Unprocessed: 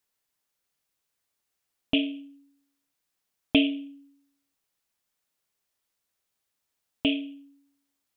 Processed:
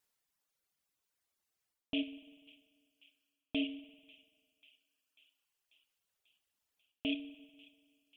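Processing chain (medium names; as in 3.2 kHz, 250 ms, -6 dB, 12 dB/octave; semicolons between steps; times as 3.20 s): reverb removal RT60 1.9 s; reverse; compression 6:1, threshold -32 dBFS, peak gain reduction 16 dB; reverse; feedback echo behind a high-pass 541 ms, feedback 68%, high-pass 1.9 kHz, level -21 dB; wow and flutter 23 cents; on a send at -15 dB: reverberation RT60 1.9 s, pre-delay 48 ms; on the sum: trim -1 dB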